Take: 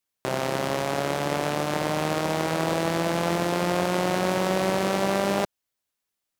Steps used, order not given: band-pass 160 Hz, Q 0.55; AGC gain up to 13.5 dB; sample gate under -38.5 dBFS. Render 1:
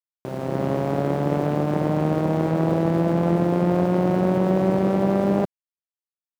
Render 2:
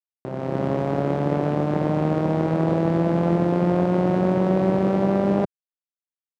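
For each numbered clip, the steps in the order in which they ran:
AGC > band-pass > sample gate; sample gate > AGC > band-pass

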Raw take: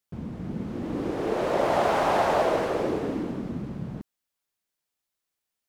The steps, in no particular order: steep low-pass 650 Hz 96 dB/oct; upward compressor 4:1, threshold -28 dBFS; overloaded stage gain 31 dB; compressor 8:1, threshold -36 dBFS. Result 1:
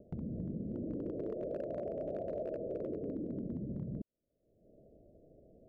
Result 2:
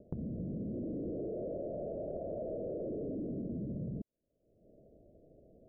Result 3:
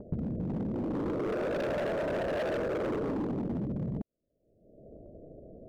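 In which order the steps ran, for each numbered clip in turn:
upward compressor > steep low-pass > compressor > overloaded stage; overloaded stage > upward compressor > steep low-pass > compressor; steep low-pass > overloaded stage > compressor > upward compressor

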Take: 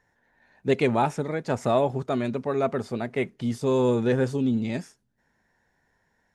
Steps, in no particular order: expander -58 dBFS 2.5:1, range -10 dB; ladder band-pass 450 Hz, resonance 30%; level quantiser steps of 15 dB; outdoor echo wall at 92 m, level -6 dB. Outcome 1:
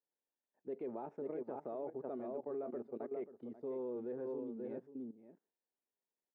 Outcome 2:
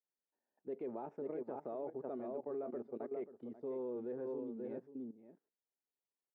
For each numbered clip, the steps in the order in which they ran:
outdoor echo > level quantiser > expander > ladder band-pass; expander > outdoor echo > level quantiser > ladder band-pass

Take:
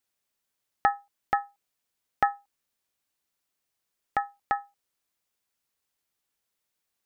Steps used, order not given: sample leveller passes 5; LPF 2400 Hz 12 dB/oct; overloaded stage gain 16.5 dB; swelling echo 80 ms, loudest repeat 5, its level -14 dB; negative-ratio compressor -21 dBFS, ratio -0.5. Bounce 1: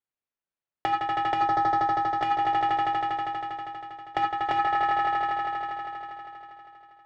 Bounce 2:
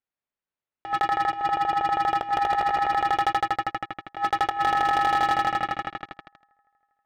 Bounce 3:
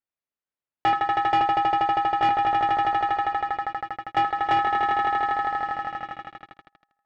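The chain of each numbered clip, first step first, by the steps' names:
sample leveller > swelling echo > overloaded stage > LPF > negative-ratio compressor; swelling echo > sample leveller > LPF > negative-ratio compressor > overloaded stage; swelling echo > negative-ratio compressor > overloaded stage > sample leveller > LPF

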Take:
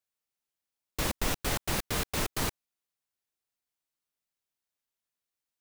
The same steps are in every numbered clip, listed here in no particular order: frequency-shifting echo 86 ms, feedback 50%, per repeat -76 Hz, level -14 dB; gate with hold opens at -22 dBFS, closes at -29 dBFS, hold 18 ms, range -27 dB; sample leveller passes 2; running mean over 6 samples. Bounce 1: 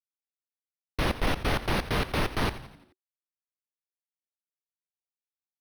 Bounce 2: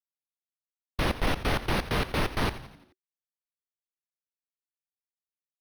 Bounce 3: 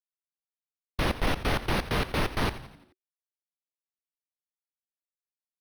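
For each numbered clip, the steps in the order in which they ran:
sample leveller > gate with hold > running mean > frequency-shifting echo; gate with hold > sample leveller > frequency-shifting echo > running mean; gate with hold > sample leveller > running mean > frequency-shifting echo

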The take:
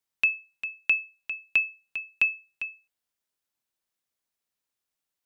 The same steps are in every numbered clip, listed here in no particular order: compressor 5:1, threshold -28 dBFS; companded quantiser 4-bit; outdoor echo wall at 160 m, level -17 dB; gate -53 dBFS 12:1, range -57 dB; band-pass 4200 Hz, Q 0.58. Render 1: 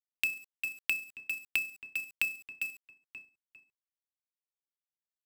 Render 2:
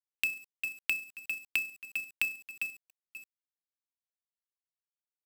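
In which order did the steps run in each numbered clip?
gate > band-pass > companded quantiser > outdoor echo > compressor; outdoor echo > gate > band-pass > companded quantiser > compressor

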